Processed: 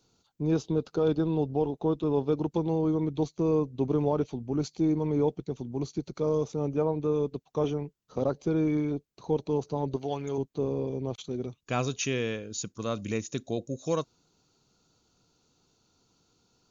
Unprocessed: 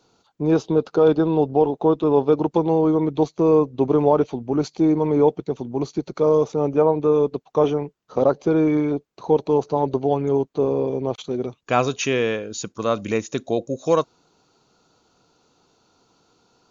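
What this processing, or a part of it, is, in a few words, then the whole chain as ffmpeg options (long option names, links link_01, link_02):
smiley-face EQ: -filter_complex "[0:a]lowshelf=frequency=170:gain=7,equalizer=frequency=820:width_type=o:width=2.6:gain=-6,highshelf=frequency=5900:gain=7,asettb=1/sr,asplit=3[link_01][link_02][link_03];[link_01]atrim=end=9.964[link_04];[link_02]atrim=start=9.96:end=10.38,asetpts=PTS-STARTPTS,afade=type=in:duration=0.004:curve=qsin,afade=type=out:start_time=0.416:duration=0.004:curve=qsin,tiltshelf=frequency=630:gain=-7.5[link_05];[link_03]atrim=start=10.376[link_06];[link_04][link_05]acrossfade=duration=0.004:curve1=hsin:curve2=qsin[link_07];[link_07][link_06]acrossfade=duration=0.004:curve1=qsin:curve2=hsin,volume=-7dB"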